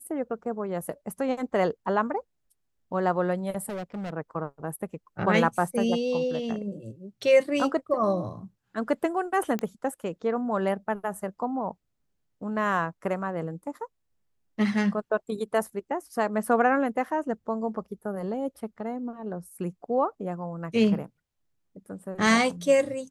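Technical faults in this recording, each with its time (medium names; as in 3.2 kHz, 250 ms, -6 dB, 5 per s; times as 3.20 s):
3.69–4.10 s: clipped -31 dBFS
9.59 s: pop -16 dBFS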